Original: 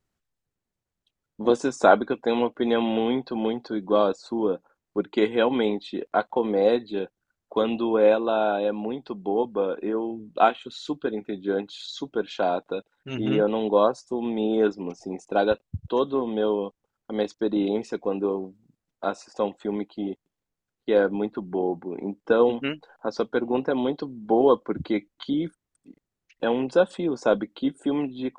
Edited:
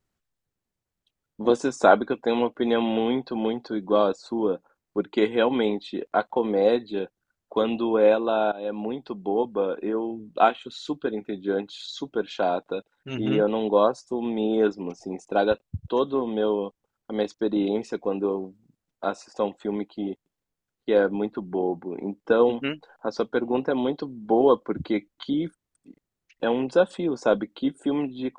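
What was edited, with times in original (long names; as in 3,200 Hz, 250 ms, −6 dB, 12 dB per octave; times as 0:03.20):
0:08.52–0:08.81: fade in, from −19 dB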